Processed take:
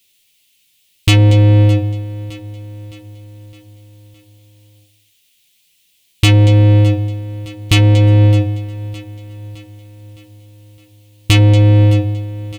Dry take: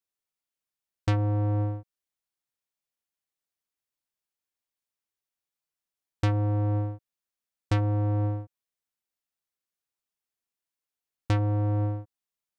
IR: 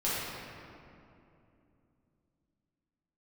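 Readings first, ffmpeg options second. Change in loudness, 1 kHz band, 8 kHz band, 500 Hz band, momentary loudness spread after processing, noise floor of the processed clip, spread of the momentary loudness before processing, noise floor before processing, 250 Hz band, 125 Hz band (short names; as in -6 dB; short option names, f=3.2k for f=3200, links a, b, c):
+16.0 dB, +9.0 dB, n/a, +15.5 dB, 19 LU, -58 dBFS, 10 LU, under -85 dBFS, +16.0 dB, +17.5 dB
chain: -filter_complex "[0:a]firequalizer=gain_entry='entry(130,0);entry(1000,-14);entry(2900,-10);entry(5100,-22)':delay=0.05:min_phase=1,aexciter=amount=9.1:drive=8.6:freq=2.2k,asplit=2[a][b];[b]adelay=12,volume=-7dB[c];[a][c]amix=inputs=2:normalize=0,asplit=2[d][e];[e]aecho=0:1:235:0.112[f];[d][f]amix=inputs=2:normalize=0,apsyclip=31.5dB,asplit=2[g][h];[h]aecho=0:1:613|1226|1839|2452|3065:0.141|0.0735|0.0382|0.0199|0.0103[i];[g][i]amix=inputs=2:normalize=0,volume=-5.5dB"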